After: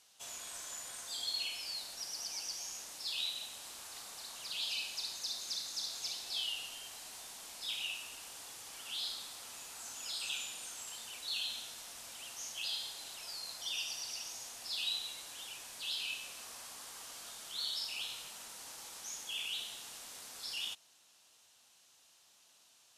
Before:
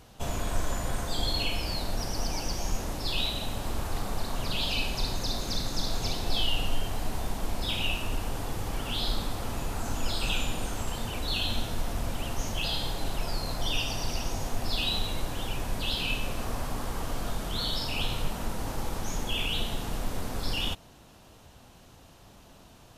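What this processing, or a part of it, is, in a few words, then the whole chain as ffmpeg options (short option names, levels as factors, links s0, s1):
piezo pickup straight into a mixer: -af "lowpass=8500,aderivative"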